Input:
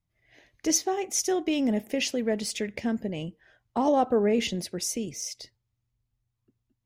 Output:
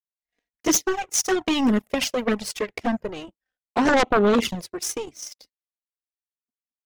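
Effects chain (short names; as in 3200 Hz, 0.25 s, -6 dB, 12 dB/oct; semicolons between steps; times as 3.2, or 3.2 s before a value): power-law curve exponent 2; envelope flanger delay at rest 4.2 ms, full sweep at -26 dBFS; sine folder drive 15 dB, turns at -13 dBFS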